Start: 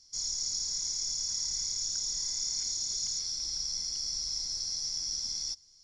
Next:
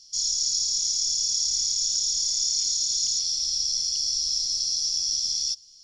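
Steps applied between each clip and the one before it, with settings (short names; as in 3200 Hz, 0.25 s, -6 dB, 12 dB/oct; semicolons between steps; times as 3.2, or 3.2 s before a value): resonant high shelf 2400 Hz +7 dB, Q 3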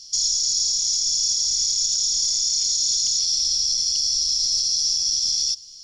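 hard clip -14 dBFS, distortion -50 dB; limiter -22 dBFS, peak gain reduction 8 dB; gain +9 dB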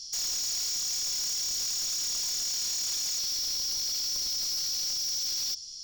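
hard clip -30 dBFS, distortion -5 dB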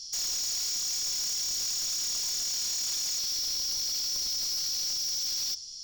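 flange 0.68 Hz, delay 7.2 ms, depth 5.6 ms, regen -88%; gain +4.5 dB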